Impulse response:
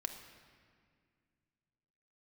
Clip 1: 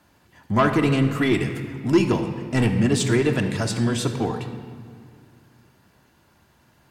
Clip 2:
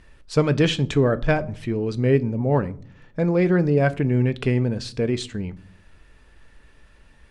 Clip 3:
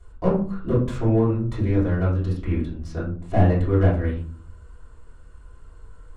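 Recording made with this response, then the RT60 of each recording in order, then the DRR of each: 1; 2.0 s, no single decay rate, 0.45 s; 4.5 dB, 12.5 dB, -9.0 dB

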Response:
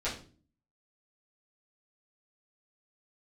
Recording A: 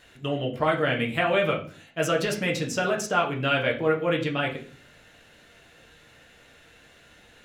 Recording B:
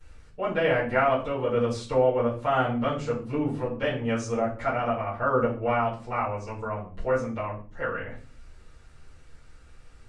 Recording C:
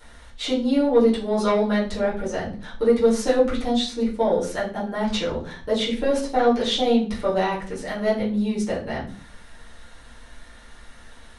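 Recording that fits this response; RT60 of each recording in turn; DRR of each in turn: C; 0.40 s, 0.40 s, 0.40 s; -1.0 dB, -17.5 dB, -10.0 dB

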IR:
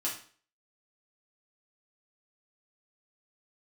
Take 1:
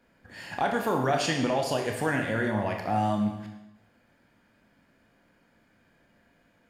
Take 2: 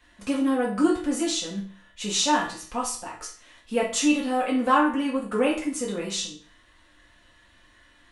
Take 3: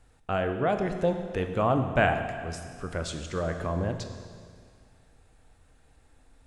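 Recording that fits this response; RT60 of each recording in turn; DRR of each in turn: 2; 0.95 s, 0.45 s, 2.0 s; 2.0 dB, -6.0 dB, 6.0 dB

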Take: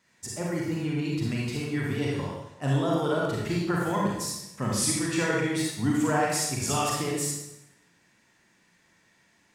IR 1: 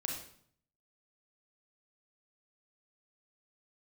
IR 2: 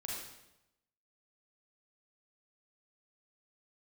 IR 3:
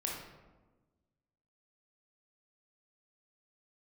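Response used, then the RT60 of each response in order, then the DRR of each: 2; 0.60 s, 0.90 s, 1.3 s; 0.0 dB, -4.0 dB, -2.5 dB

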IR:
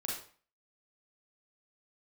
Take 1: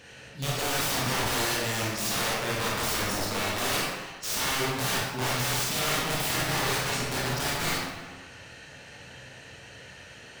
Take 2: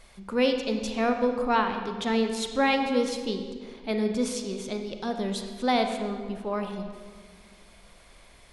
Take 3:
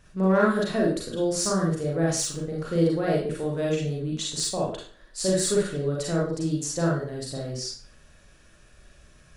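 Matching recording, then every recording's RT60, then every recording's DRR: 3; 1.3 s, 1.8 s, 0.45 s; -5.5 dB, 5.5 dB, -3.5 dB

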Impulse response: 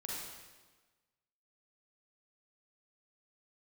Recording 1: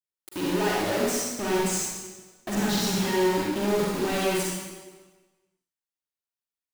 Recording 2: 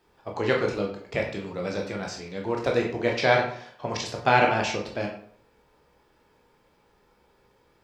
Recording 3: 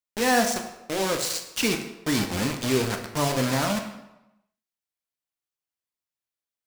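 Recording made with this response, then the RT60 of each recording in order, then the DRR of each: 1; 1.3 s, 0.55 s, 0.95 s; -5.0 dB, -0.5 dB, 3.5 dB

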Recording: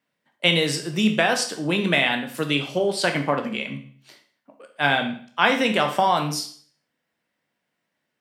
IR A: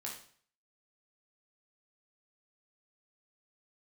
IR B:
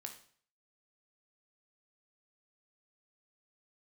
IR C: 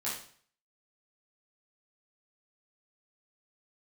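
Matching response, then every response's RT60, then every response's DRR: B; 0.50 s, 0.50 s, 0.50 s; -2.5 dB, 4.0 dB, -8.5 dB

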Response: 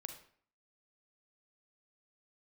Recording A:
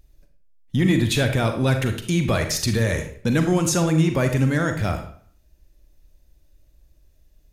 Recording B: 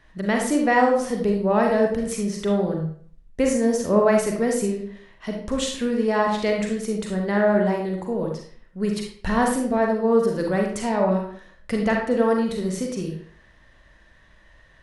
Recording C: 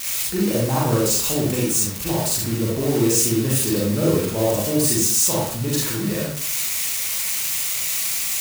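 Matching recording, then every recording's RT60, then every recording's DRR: A; 0.55 s, 0.55 s, 0.55 s; 6.0 dB, 0.5 dB, -6.0 dB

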